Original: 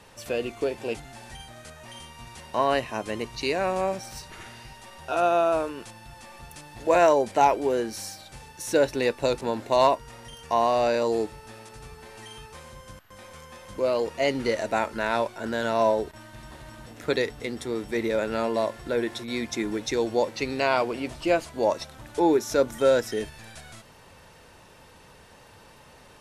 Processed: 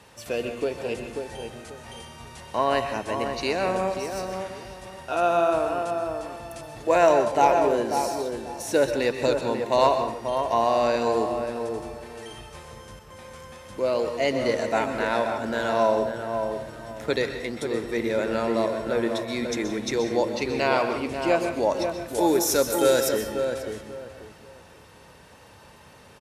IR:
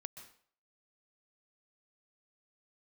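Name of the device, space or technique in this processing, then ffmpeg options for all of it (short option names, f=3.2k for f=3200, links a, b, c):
bathroom: -filter_complex "[0:a]asettb=1/sr,asplit=3[a][b][c];[a]atrim=end=22.084[d];[b]atrim=start=22.08:end=23.09,asetpts=PTS-STARTPTS,afade=t=in:d=0.004:c=qsin,afade=t=out:st=1.006:d=0.004:c=qsin,aemphasis=mode=production:type=75fm[e];[c]atrim=start=23.086[f];[d][e]acrossfade=d=0.004:c1=hsin:c2=qsin[g];[g][f]acrossfade=d=0.004:c1=qsin:c2=hsin,highpass=50[h];[1:a]atrim=start_sample=2205[i];[h][i]afir=irnorm=-1:irlink=0,asplit=2[j][k];[k]adelay=539,lowpass=f=1.4k:p=1,volume=-5.5dB,asplit=2[l][m];[m]adelay=539,lowpass=f=1.4k:p=1,volume=0.27,asplit=2[n][o];[o]adelay=539,lowpass=f=1.4k:p=1,volume=0.27,asplit=2[p][q];[q]adelay=539,lowpass=f=1.4k:p=1,volume=0.27[r];[j][l][n][p][r]amix=inputs=5:normalize=0,volume=5dB"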